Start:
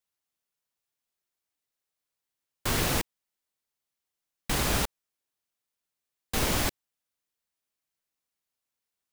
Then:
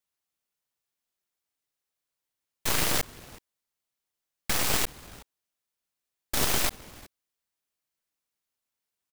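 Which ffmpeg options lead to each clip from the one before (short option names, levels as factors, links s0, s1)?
-af "aecho=1:1:371:0.0891,aeval=exprs='0.211*(cos(1*acos(clip(val(0)/0.211,-1,1)))-cos(1*PI/2))+0.0299*(cos(3*acos(clip(val(0)/0.211,-1,1)))-cos(3*PI/2))+0.0473*(cos(7*acos(clip(val(0)/0.211,-1,1)))-cos(7*PI/2))+0.0473*(cos(8*acos(clip(val(0)/0.211,-1,1)))-cos(8*PI/2))':c=same"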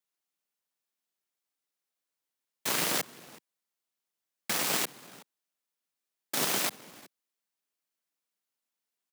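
-af "highpass=f=160:w=0.5412,highpass=f=160:w=1.3066,volume=0.794"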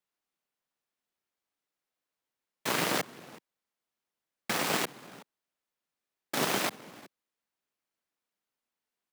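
-af "highshelf=f=3800:g=-10.5,volume=1.58"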